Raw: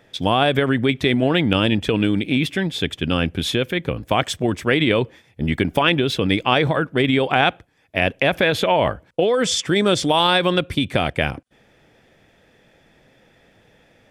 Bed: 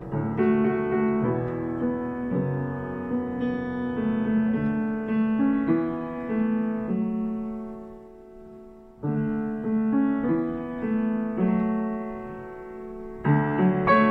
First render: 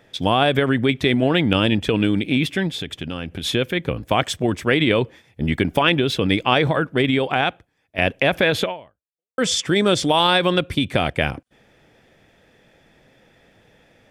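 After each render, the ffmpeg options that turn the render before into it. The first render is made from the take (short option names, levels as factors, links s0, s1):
-filter_complex "[0:a]asplit=3[s0][s1][s2];[s0]afade=t=out:st=2.74:d=0.02[s3];[s1]acompressor=threshold=0.0562:ratio=4:attack=3.2:release=140:knee=1:detection=peak,afade=t=in:st=2.74:d=0.02,afade=t=out:st=3.43:d=0.02[s4];[s2]afade=t=in:st=3.43:d=0.02[s5];[s3][s4][s5]amix=inputs=3:normalize=0,asplit=3[s6][s7][s8];[s6]atrim=end=7.98,asetpts=PTS-STARTPTS,afade=t=out:st=6.94:d=1.04:silence=0.316228[s9];[s7]atrim=start=7.98:end=9.38,asetpts=PTS-STARTPTS,afade=t=in:d=0.004:c=hsin:silence=0.316228,afade=t=out:st=0.65:d=0.75:c=exp[s10];[s8]atrim=start=9.38,asetpts=PTS-STARTPTS,afade=t=in:d=0.004:c=hsin[s11];[s9][s10][s11]concat=n=3:v=0:a=1"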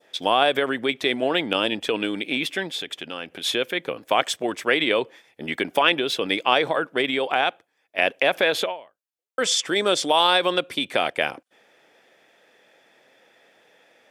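-af "highpass=440,adynamicequalizer=threshold=0.0282:dfrequency=1900:dqfactor=0.96:tfrequency=1900:tqfactor=0.96:attack=5:release=100:ratio=0.375:range=2:mode=cutabove:tftype=bell"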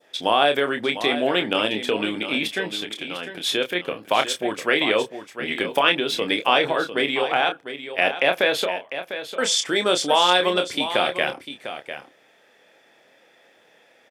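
-filter_complex "[0:a]asplit=2[s0][s1];[s1]adelay=28,volume=0.447[s2];[s0][s2]amix=inputs=2:normalize=0,aecho=1:1:700:0.282"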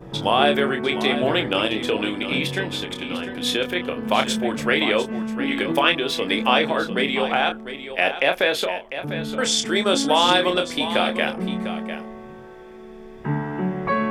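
-filter_complex "[1:a]volume=0.668[s0];[0:a][s0]amix=inputs=2:normalize=0"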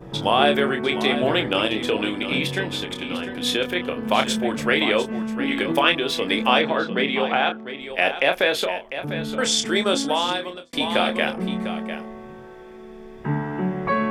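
-filter_complex "[0:a]asettb=1/sr,asplit=3[s0][s1][s2];[s0]atrim=end=6.614[s3];[s1]atrim=start=6.61:end=7.81,asetpts=PTS-STARTPTS,afade=t=in:d=0.004:c=qsin,afade=t=out:st=1.196:d=0.004:c=qsin,highpass=100,lowpass=4600[s4];[s2]atrim=start=7.806[s5];[s3][s4]acrossfade=d=0.004:c1=hsin:c2=qsin[s6];[s6][s5]acrossfade=d=0.004:c1=qsin:c2=hsin,asplit=2[s7][s8];[s7]atrim=end=10.73,asetpts=PTS-STARTPTS,afade=t=out:st=9.77:d=0.96[s9];[s8]atrim=start=10.73,asetpts=PTS-STARTPTS,afade=t=in:d=0.004:c=hsin[s10];[s9][s10]concat=n=2:v=0:a=1"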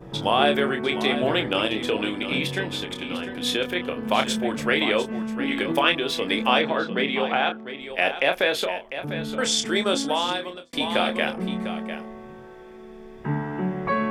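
-af "volume=0.794"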